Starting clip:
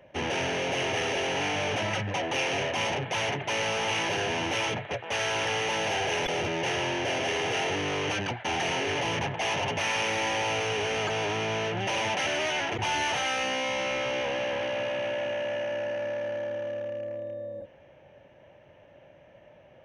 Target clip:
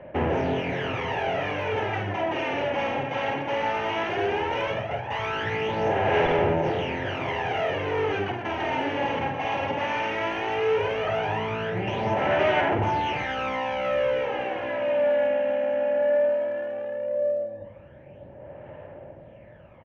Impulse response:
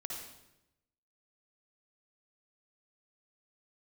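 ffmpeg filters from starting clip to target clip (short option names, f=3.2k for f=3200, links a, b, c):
-filter_complex "[0:a]lowpass=1.8k,asplit=2[a][b];[b]acompressor=threshold=-41dB:ratio=6,volume=0dB[c];[a][c]amix=inputs=2:normalize=0,aecho=1:1:50|125|237.5|406.2|659.4:0.631|0.398|0.251|0.158|0.1,aphaser=in_gain=1:out_gain=1:delay=3.7:decay=0.55:speed=0.16:type=sinusoidal,volume=-2dB"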